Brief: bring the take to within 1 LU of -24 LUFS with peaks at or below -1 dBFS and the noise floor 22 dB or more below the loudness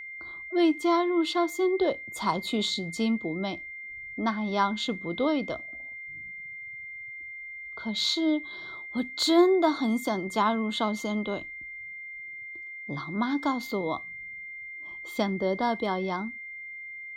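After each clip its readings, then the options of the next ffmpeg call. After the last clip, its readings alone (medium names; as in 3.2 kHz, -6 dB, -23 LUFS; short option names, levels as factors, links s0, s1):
steady tone 2.1 kHz; tone level -38 dBFS; loudness -29.0 LUFS; peak level -10.5 dBFS; loudness target -24.0 LUFS
-> -af "bandreject=f=2100:w=30"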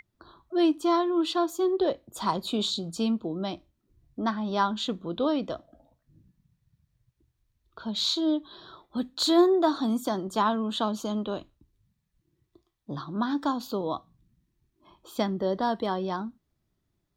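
steady tone not found; loudness -28.0 LUFS; peak level -10.5 dBFS; loudness target -24.0 LUFS
-> -af "volume=1.58"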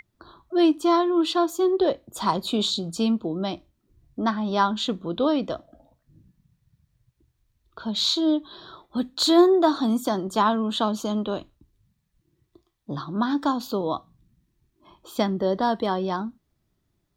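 loudness -24.0 LUFS; peak level -6.5 dBFS; noise floor -74 dBFS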